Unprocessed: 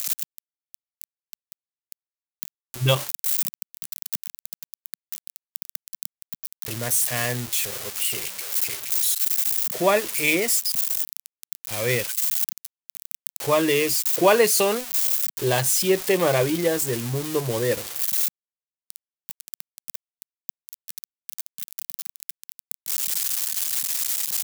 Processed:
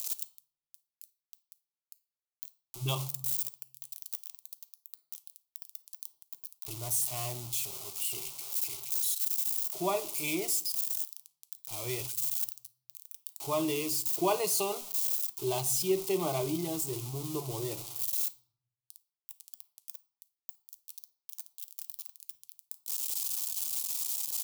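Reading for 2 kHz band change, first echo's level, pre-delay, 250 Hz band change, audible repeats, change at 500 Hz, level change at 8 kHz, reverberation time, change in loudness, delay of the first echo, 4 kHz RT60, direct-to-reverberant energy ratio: -17.0 dB, no echo, 5 ms, -9.0 dB, no echo, -12.0 dB, -8.5 dB, 0.60 s, -9.5 dB, no echo, 0.40 s, 10.5 dB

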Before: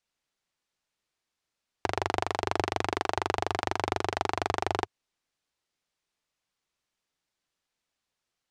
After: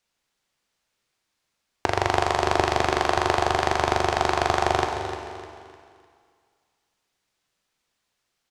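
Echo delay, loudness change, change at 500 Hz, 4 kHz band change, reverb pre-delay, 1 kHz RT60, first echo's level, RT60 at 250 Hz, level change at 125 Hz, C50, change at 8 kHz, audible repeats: 303 ms, +7.5 dB, +8.0 dB, +7.5 dB, 12 ms, 2.2 s, -11.0 dB, 2.2 s, +8.0 dB, 4.5 dB, +8.0 dB, 3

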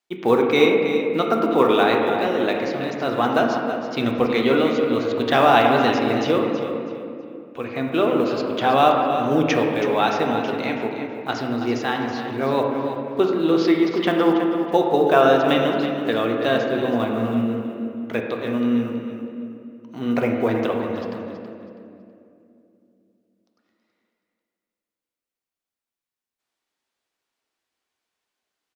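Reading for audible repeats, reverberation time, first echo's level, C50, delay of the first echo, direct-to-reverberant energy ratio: 3, 2.6 s, -10.0 dB, 2.0 dB, 325 ms, 0.0 dB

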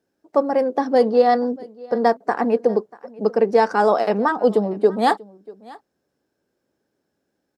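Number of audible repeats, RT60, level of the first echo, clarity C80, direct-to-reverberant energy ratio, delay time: 1, no reverb, -22.5 dB, no reverb, no reverb, 639 ms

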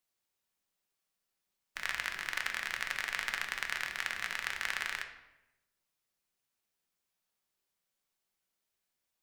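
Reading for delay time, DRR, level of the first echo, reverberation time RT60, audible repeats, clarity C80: no echo, 3.5 dB, no echo, 0.95 s, no echo, 10.5 dB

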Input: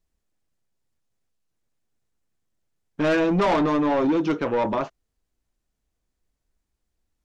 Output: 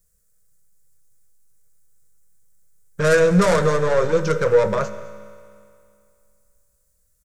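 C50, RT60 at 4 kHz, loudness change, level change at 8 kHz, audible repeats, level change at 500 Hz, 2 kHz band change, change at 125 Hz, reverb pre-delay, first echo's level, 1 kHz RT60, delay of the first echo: 12.0 dB, 2.3 s, +4.0 dB, no reading, 1, +7.0 dB, +6.0 dB, +8.5 dB, 4 ms, -20.0 dB, 2.4 s, 208 ms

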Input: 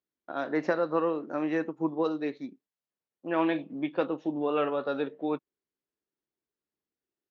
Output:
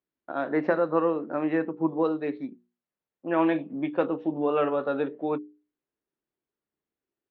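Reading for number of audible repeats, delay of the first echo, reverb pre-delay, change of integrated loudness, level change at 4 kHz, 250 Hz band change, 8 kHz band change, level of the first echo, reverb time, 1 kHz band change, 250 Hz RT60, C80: no echo, no echo, no reverb, +3.0 dB, -3.0 dB, +3.0 dB, no reading, no echo, no reverb, +3.0 dB, no reverb, no reverb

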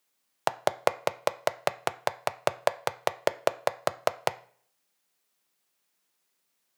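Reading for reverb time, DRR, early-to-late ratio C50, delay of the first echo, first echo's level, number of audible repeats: 0.55 s, 11.0 dB, 18.0 dB, no echo, no echo, no echo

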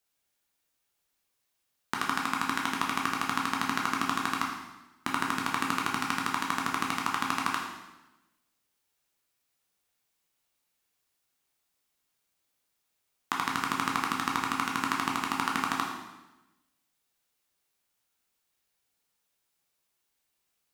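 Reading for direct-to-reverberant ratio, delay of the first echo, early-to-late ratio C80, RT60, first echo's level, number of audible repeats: -2.0 dB, no echo, 5.0 dB, 1.0 s, no echo, no echo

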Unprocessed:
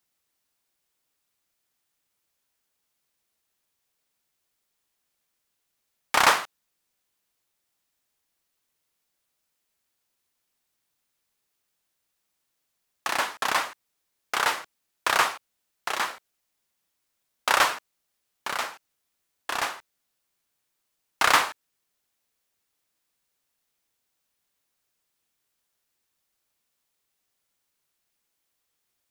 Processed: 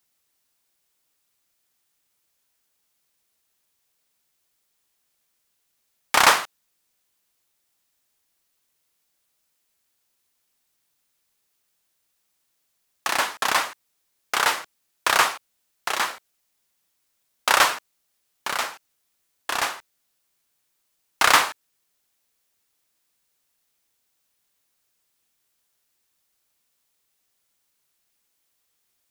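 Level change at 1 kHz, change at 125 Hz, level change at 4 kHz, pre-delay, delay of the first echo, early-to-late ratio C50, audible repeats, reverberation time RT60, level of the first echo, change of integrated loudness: +3.0 dB, +2.5 dB, +4.5 dB, no reverb, no echo, no reverb, no echo, no reverb, no echo, +3.0 dB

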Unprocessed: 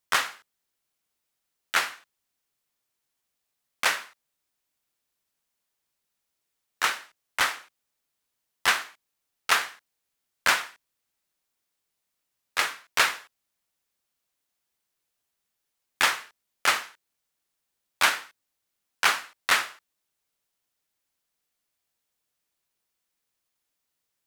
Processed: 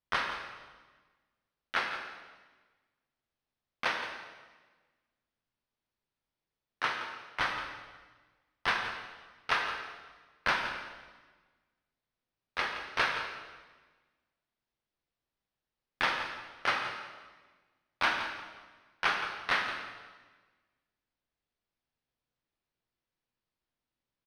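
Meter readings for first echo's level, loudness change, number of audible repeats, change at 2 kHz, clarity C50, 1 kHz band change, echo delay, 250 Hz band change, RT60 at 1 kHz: -12.0 dB, -7.5 dB, 1, -5.5 dB, 4.5 dB, -4.5 dB, 170 ms, 0.0 dB, 1.3 s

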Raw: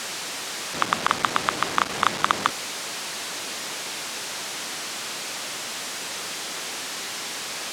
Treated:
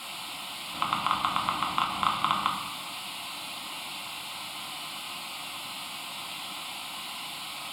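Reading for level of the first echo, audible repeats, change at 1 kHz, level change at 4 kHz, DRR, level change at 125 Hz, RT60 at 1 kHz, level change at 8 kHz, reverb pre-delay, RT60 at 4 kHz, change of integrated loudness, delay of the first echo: no echo, no echo, -3.0 dB, -4.0 dB, -0.5 dB, -3.0 dB, 1.0 s, -12.0 dB, 4 ms, 0.85 s, -5.0 dB, no echo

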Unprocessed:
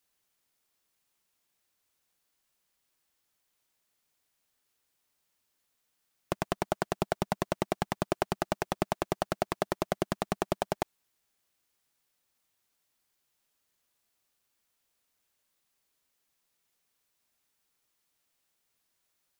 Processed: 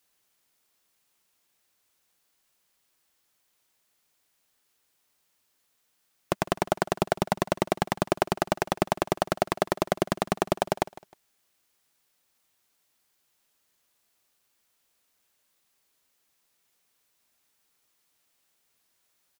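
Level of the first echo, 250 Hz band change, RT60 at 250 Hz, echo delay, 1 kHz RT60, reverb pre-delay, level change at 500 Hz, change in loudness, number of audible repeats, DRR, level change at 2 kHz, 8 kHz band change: -19.0 dB, +4.5 dB, no reverb, 155 ms, no reverb, no reverb, +5.5 dB, +5.0 dB, 2, no reverb, +5.5 dB, +5.5 dB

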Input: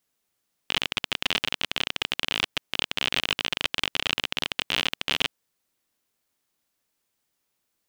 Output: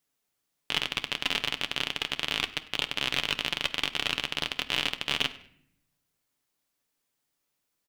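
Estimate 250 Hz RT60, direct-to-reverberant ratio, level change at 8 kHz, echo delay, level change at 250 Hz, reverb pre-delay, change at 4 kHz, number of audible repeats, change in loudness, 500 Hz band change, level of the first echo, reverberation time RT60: 1.1 s, 8.5 dB, -2.5 dB, 99 ms, -2.0 dB, 7 ms, -2.5 dB, 2, -2.5 dB, -2.5 dB, -22.0 dB, 0.65 s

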